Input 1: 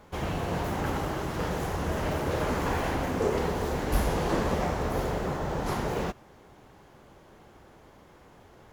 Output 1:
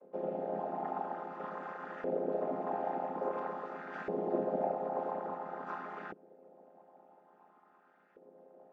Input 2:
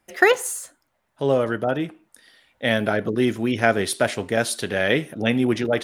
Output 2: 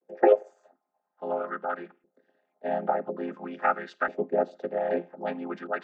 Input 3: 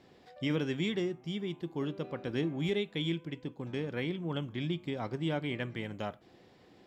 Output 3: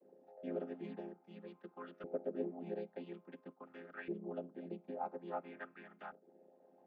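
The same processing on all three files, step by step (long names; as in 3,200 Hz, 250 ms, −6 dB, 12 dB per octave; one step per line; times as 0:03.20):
channel vocoder with a chord as carrier minor triad, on F3
harmonic and percussive parts rebalanced percussive +8 dB
auto-filter band-pass saw up 0.49 Hz 450–1,600 Hz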